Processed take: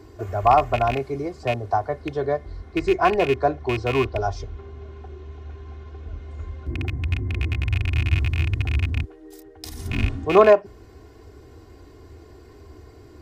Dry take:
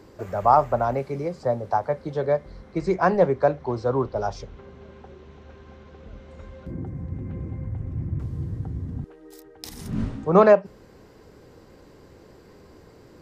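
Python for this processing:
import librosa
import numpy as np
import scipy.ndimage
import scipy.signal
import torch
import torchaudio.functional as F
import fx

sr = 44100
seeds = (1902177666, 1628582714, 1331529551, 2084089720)

y = fx.rattle_buzz(x, sr, strikes_db=-27.0, level_db=-17.0)
y = fx.peak_eq(y, sr, hz=76.0, db=10.0, octaves=1.3)
y = y + 0.73 * np.pad(y, (int(2.8 * sr / 1000.0), 0))[:len(y)]
y = y * librosa.db_to_amplitude(-1.0)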